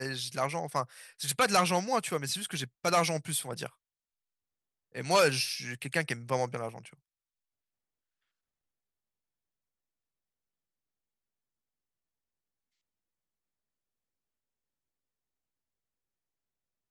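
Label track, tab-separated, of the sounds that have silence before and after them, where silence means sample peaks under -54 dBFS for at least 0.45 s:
4.950000	6.940000	sound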